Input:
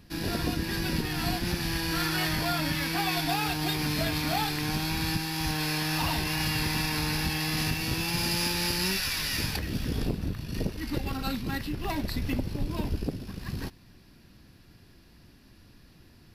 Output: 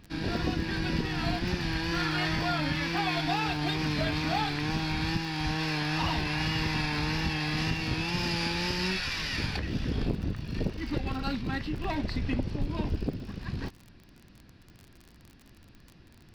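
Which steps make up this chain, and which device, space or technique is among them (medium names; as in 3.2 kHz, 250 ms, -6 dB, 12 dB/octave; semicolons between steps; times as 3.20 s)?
lo-fi chain (low-pass 4.3 kHz 12 dB/octave; wow and flutter; crackle 33 per s -38 dBFS); 11.99–12.62 s: low-pass 11 kHz 12 dB/octave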